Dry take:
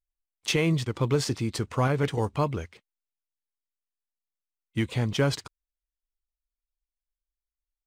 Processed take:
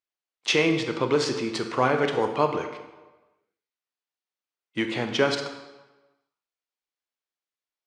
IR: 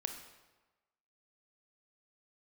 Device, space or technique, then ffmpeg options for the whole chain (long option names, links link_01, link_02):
supermarket ceiling speaker: -filter_complex "[0:a]highpass=310,lowpass=5100[link_01];[1:a]atrim=start_sample=2205[link_02];[link_01][link_02]afir=irnorm=-1:irlink=0,volume=6dB"